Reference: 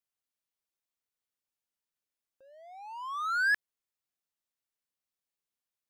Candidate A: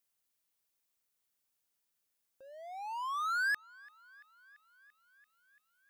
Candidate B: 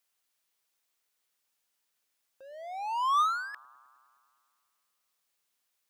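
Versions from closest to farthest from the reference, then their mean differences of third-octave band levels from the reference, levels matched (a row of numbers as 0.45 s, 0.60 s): A, B; 3.0 dB, 4.5 dB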